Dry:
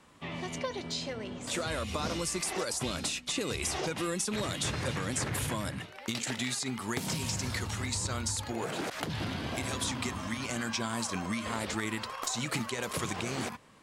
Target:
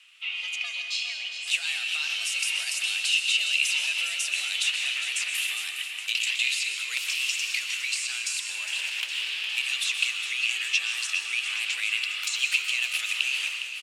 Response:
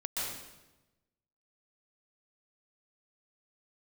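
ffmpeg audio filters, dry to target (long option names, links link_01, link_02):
-filter_complex "[0:a]afreqshift=170,aeval=exprs='0.1*(abs(mod(val(0)/0.1+3,4)-2)-1)':channel_layout=same,highpass=frequency=2700:width_type=q:width=7.6,aecho=1:1:410|820|1230|1640|2050|2460:0.316|0.171|0.0922|0.0498|0.0269|0.0145,asplit=2[link_01][link_02];[1:a]atrim=start_sample=2205[link_03];[link_02][link_03]afir=irnorm=-1:irlink=0,volume=-6.5dB[link_04];[link_01][link_04]amix=inputs=2:normalize=0,volume=-1.5dB"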